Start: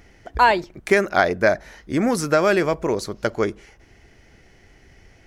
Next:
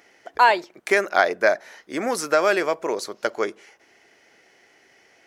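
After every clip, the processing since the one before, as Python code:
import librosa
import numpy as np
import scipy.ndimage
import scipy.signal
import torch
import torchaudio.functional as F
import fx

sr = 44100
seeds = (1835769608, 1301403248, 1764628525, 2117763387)

y = scipy.signal.sosfilt(scipy.signal.butter(2, 430.0, 'highpass', fs=sr, output='sos'), x)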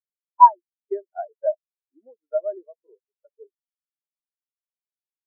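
y = fx.high_shelf(x, sr, hz=2800.0, db=-12.0)
y = fx.spectral_expand(y, sr, expansion=4.0)
y = y * 10.0 ** (3.0 / 20.0)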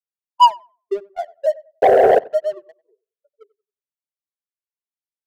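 y = fx.spec_paint(x, sr, seeds[0], shape='noise', start_s=1.82, length_s=0.37, low_hz=380.0, high_hz=790.0, level_db=-13.0)
y = fx.leveller(y, sr, passes=2)
y = fx.echo_tape(y, sr, ms=93, feedback_pct=25, wet_db=-19, lp_hz=1200.0, drive_db=7.0, wow_cents=32)
y = y * 10.0 ** (-3.0 / 20.0)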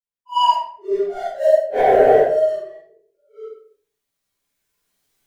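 y = fx.phase_scramble(x, sr, seeds[1], window_ms=200)
y = fx.recorder_agc(y, sr, target_db=-4.5, rise_db_per_s=9.6, max_gain_db=30)
y = fx.room_shoebox(y, sr, seeds[2], volume_m3=52.0, walls='mixed', distance_m=2.1)
y = y * 10.0 ** (-11.5 / 20.0)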